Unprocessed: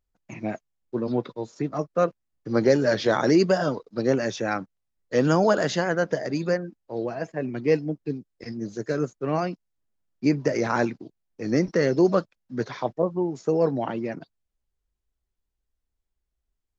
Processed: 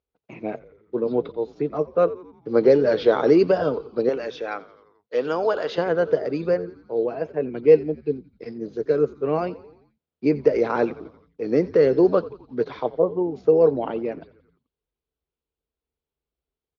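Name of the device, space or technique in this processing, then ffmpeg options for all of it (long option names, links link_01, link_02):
frequency-shifting delay pedal into a guitar cabinet: -filter_complex "[0:a]asettb=1/sr,asplit=3[link_01][link_02][link_03];[link_01]atrim=end=4.094[link_04];[link_02]atrim=start=4.09:end=5.78,asetpts=PTS-STARTPTS,afade=type=in:duration=0.004:curve=qsin,afade=type=out:start_time=1.686:duration=0.004:curve=qsin,highpass=frequency=870:poles=1[link_05];[link_03]atrim=start=5.776[link_06];[link_04][link_05]acrossfade=duration=0.004:curve1=hsin:curve2=qsin[link_07];[link_07][link_06]acrossfade=duration=0.004:curve1=qsin:curve2=hsin,asplit=6[link_08][link_09][link_10][link_11][link_12][link_13];[link_09]adelay=87,afreqshift=-80,volume=-19dB[link_14];[link_10]adelay=174,afreqshift=-160,volume=-23.3dB[link_15];[link_11]adelay=261,afreqshift=-240,volume=-27.6dB[link_16];[link_12]adelay=348,afreqshift=-320,volume=-31.9dB[link_17];[link_13]adelay=435,afreqshift=-400,volume=-36.2dB[link_18];[link_08][link_14][link_15][link_16][link_17][link_18]amix=inputs=6:normalize=0,highpass=80,equalizer=frequency=110:width_type=q:width=4:gain=-9,equalizer=frequency=200:width_type=q:width=4:gain=-5,equalizer=frequency=450:width_type=q:width=4:gain=10,equalizer=frequency=1800:width_type=q:width=4:gain=-7,lowpass=frequency=4000:width=0.5412,lowpass=frequency=4000:width=1.3066"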